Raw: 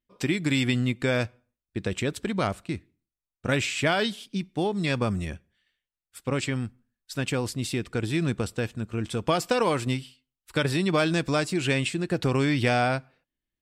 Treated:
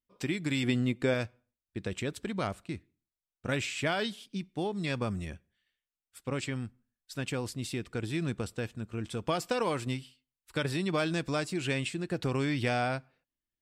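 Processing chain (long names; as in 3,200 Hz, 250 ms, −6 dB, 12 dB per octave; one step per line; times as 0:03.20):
0:00.63–0:01.14: parametric band 400 Hz +5.5 dB 2.2 octaves
level −6.5 dB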